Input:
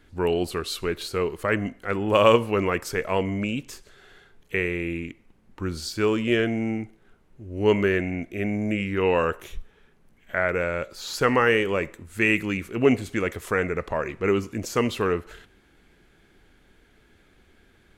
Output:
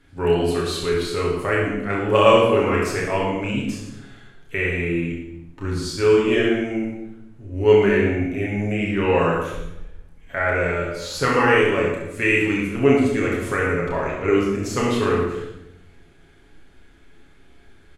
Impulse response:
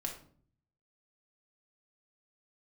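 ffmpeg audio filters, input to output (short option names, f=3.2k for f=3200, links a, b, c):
-filter_complex "[0:a]aecho=1:1:30|67.5|114.4|173|246.2:0.631|0.398|0.251|0.158|0.1[a];[1:a]atrim=start_sample=2205,asetrate=22491,aresample=44100[b];[a][b]afir=irnorm=-1:irlink=0,volume=-3dB"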